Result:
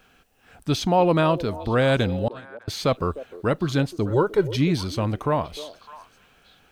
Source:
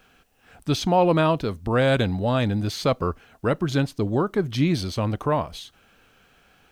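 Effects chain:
0:02.28–0:02.68: noise gate −17 dBFS, range −41 dB
0:04.10–0:04.56: comb filter 2.1 ms, depth 89%
echo through a band-pass that steps 303 ms, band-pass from 450 Hz, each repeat 1.4 octaves, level −12 dB

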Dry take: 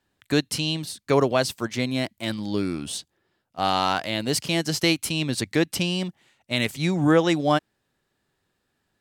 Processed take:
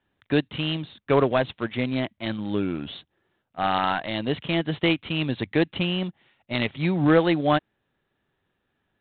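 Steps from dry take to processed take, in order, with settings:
IMA ADPCM 32 kbit/s 8,000 Hz

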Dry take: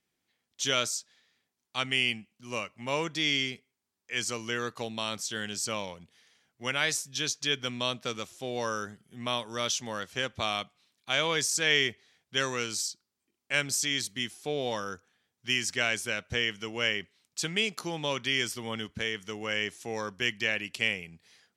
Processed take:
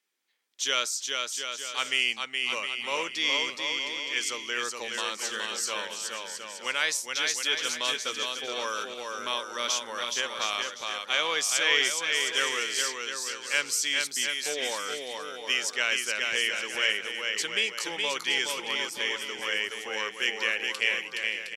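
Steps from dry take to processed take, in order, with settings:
high-pass filter 500 Hz 12 dB per octave
parametric band 690 Hz −8.5 dB 0.3 octaves
on a send: bouncing-ball delay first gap 420 ms, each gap 0.7×, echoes 5
on the sum: level +1.5 dB

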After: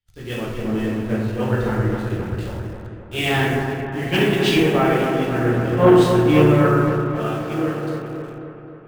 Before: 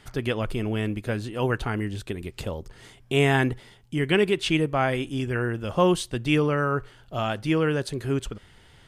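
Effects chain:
fade-out on the ending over 2.34 s
high-shelf EQ 6,400 Hz −12 dB
dense smooth reverb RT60 1.1 s, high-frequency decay 0.75×, DRR −5 dB
in parallel at −5.5 dB: bit reduction 5 bits
on the sum: soft clipping −4 dBFS, distortion −18 dB
on a send: delay with a low-pass on its return 267 ms, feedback 77%, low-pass 1,900 Hz, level −4 dB
on the sum: multiband upward and downward expander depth 100%
level −5.5 dB

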